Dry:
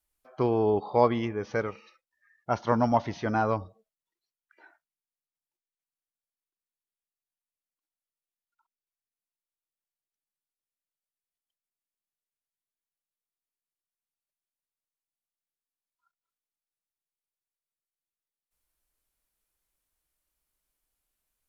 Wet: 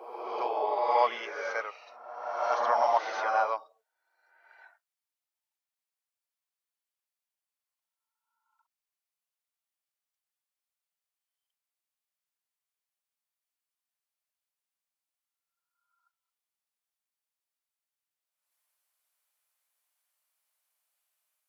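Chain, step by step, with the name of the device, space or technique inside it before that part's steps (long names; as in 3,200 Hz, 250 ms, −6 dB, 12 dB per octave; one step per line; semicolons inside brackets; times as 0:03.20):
ghost voice (reversed playback; convolution reverb RT60 1.4 s, pre-delay 38 ms, DRR −0.5 dB; reversed playback; high-pass filter 630 Hz 24 dB per octave)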